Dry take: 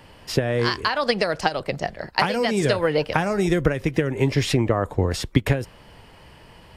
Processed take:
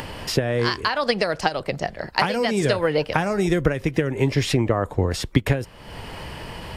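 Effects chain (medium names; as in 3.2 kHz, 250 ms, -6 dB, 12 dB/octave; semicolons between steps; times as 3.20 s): upward compressor, threshold -22 dBFS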